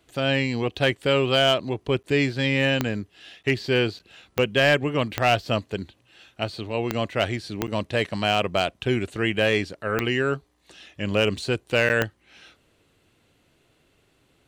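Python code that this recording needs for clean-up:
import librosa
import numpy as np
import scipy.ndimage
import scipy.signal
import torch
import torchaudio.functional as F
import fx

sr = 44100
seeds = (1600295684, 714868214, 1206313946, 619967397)

y = fx.fix_declip(x, sr, threshold_db=-10.5)
y = fx.fix_declick_ar(y, sr, threshold=10.0)
y = fx.fix_interpolate(y, sr, at_s=(2.03, 3.43, 3.99, 7.67, 11.89), length_ms=8.4)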